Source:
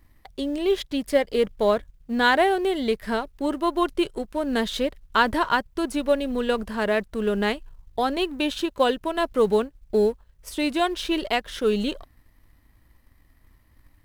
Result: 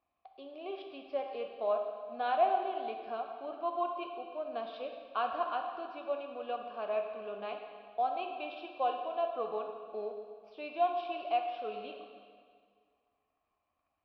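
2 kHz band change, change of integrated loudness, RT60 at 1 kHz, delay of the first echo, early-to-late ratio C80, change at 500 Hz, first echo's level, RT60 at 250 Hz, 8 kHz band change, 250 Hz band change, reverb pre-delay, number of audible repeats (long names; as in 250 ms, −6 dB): −19.0 dB, −12.0 dB, 1.9 s, no echo audible, 6.0 dB, −12.0 dB, no echo audible, 2.0 s, below −35 dB, −23.5 dB, 5 ms, no echo audible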